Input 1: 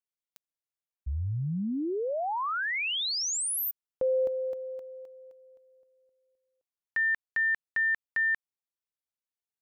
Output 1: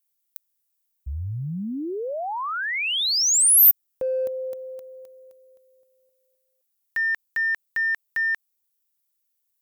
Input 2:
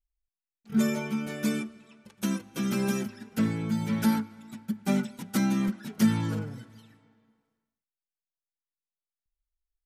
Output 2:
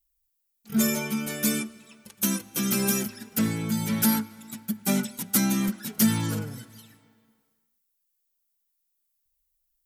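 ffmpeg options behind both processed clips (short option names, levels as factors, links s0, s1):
-filter_complex "[0:a]aemphasis=mode=production:type=75fm,asplit=2[s0][s1];[s1]volume=17.8,asoftclip=hard,volume=0.0562,volume=0.282[s2];[s0][s2]amix=inputs=2:normalize=0"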